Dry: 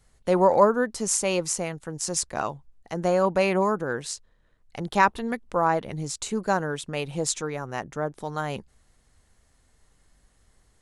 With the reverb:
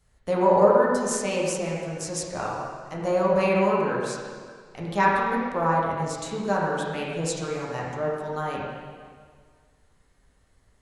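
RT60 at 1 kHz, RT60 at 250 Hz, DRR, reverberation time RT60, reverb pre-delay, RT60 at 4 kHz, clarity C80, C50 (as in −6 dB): 1.8 s, 1.8 s, −5.0 dB, 1.8 s, 4 ms, 1.7 s, 1.0 dB, −1.0 dB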